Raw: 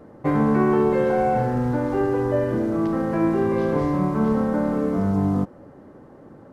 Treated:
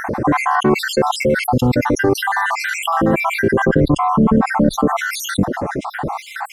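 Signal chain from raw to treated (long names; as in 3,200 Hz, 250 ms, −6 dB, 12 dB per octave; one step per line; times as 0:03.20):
time-frequency cells dropped at random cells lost 68%
0:03.64–0:05.13: spectral tilt −2 dB per octave
envelope flattener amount 70%
level +3.5 dB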